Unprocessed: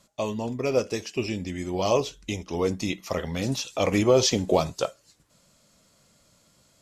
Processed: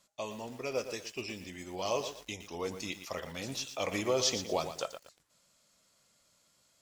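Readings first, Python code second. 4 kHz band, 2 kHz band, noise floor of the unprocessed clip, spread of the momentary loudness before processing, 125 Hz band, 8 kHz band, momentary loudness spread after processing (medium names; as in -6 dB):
-6.0 dB, -6.0 dB, -63 dBFS, 11 LU, -15.5 dB, -5.5 dB, 12 LU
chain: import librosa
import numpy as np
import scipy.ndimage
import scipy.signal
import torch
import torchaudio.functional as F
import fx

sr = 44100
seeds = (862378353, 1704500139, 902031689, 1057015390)

y = fx.low_shelf(x, sr, hz=490.0, db=-10.5)
y = fx.echo_crushed(y, sr, ms=117, feedback_pct=35, bits=7, wet_db=-9.5)
y = y * 10.0 ** (-6.0 / 20.0)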